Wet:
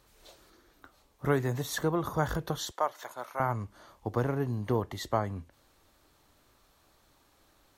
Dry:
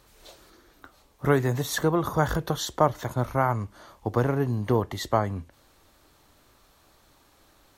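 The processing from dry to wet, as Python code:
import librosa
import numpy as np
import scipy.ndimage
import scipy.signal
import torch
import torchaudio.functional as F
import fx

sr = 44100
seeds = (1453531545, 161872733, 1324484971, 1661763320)

y = fx.highpass(x, sr, hz=670.0, slope=12, at=(2.71, 3.4))
y = F.gain(torch.from_numpy(y), -5.5).numpy()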